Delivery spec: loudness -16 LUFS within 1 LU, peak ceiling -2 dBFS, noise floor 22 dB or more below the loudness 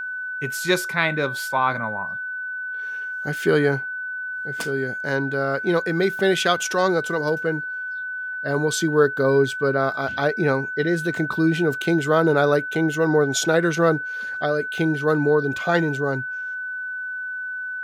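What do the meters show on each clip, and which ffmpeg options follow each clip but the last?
steady tone 1500 Hz; tone level -27 dBFS; loudness -22.5 LUFS; peak -5.5 dBFS; loudness target -16.0 LUFS
-> -af "bandreject=f=1.5k:w=30"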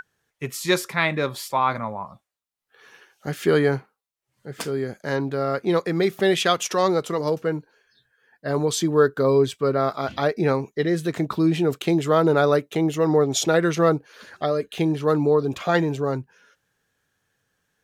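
steady tone none; loudness -22.5 LUFS; peak -6.0 dBFS; loudness target -16.0 LUFS
-> -af "volume=6.5dB,alimiter=limit=-2dB:level=0:latency=1"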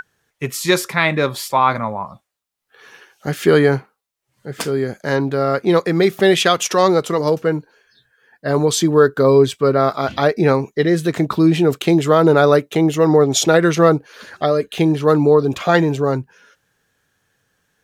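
loudness -16.0 LUFS; peak -2.0 dBFS; noise floor -75 dBFS

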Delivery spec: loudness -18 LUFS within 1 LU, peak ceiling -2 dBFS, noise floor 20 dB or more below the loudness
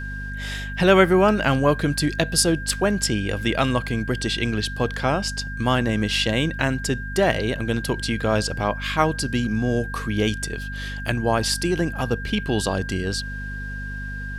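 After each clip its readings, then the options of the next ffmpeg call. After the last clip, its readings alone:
hum 50 Hz; harmonics up to 250 Hz; hum level -30 dBFS; steady tone 1600 Hz; tone level -33 dBFS; loudness -22.5 LUFS; peak -2.5 dBFS; loudness target -18.0 LUFS
-> -af "bandreject=f=50:t=h:w=6,bandreject=f=100:t=h:w=6,bandreject=f=150:t=h:w=6,bandreject=f=200:t=h:w=6,bandreject=f=250:t=h:w=6"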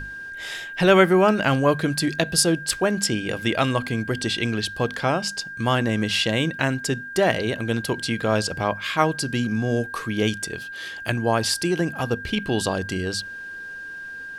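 hum none; steady tone 1600 Hz; tone level -33 dBFS
-> -af "bandreject=f=1.6k:w=30"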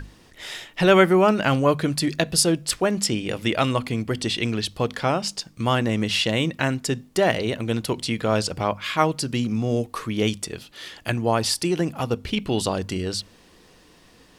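steady tone none; loudness -23.0 LUFS; peak -3.0 dBFS; loudness target -18.0 LUFS
-> -af "volume=5dB,alimiter=limit=-2dB:level=0:latency=1"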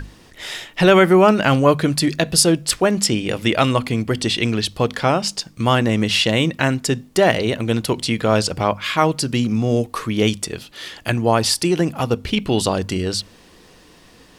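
loudness -18.5 LUFS; peak -2.0 dBFS; noise floor -48 dBFS

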